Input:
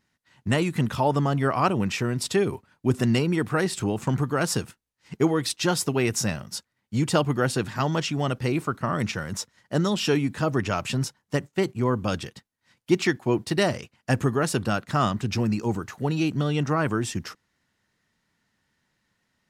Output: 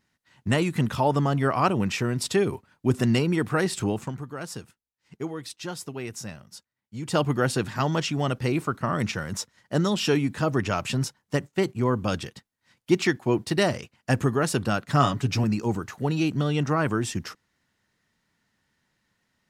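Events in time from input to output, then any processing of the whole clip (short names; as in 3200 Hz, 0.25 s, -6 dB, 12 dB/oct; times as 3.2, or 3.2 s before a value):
3.93–7.22 dip -11 dB, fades 0.20 s
14.86–15.44 comb 7.1 ms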